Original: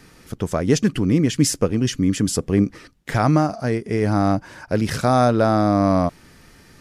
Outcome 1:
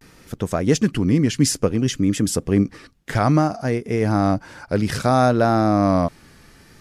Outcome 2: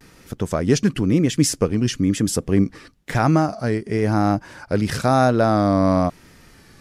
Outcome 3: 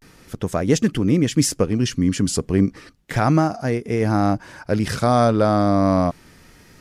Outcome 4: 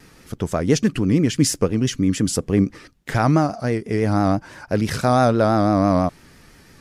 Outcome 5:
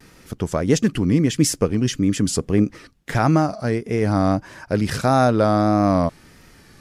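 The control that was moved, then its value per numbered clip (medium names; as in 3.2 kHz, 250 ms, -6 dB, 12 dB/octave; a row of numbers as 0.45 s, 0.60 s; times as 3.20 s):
vibrato, rate: 0.59 Hz, 1 Hz, 0.33 Hz, 6 Hz, 1.6 Hz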